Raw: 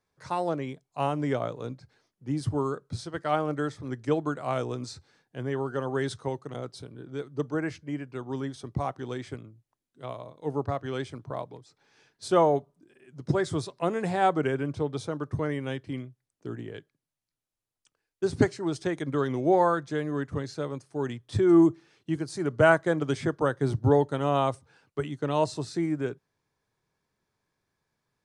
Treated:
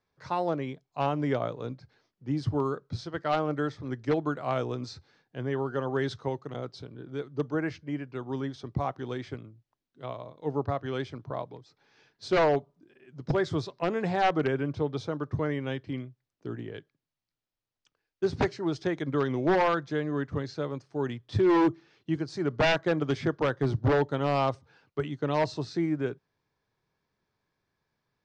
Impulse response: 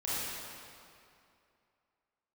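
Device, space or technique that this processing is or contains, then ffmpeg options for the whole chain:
synthesiser wavefolder: -af "aeval=exprs='0.141*(abs(mod(val(0)/0.141+3,4)-2)-1)':channel_layout=same,lowpass=frequency=5600:width=0.5412,lowpass=frequency=5600:width=1.3066"

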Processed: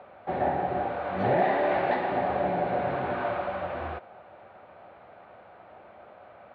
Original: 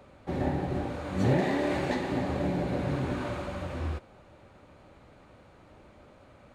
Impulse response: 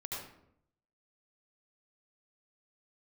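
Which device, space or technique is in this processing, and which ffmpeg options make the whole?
overdrive pedal into a guitar cabinet: -filter_complex "[0:a]asplit=2[link_01][link_02];[link_02]highpass=frequency=720:poles=1,volume=10dB,asoftclip=type=tanh:threshold=-16.5dB[link_03];[link_01][link_03]amix=inputs=2:normalize=0,lowpass=frequency=1500:poles=1,volume=-6dB,highpass=98,equalizer=frequency=140:width_type=q:width=4:gain=-5,equalizer=frequency=280:width_type=q:width=4:gain=-8,equalizer=frequency=710:width_type=q:width=4:gain=10,equalizer=frequency=1500:width_type=q:width=4:gain=3,lowpass=frequency=3700:width=0.5412,lowpass=frequency=3700:width=1.3066,volume=1.5dB"

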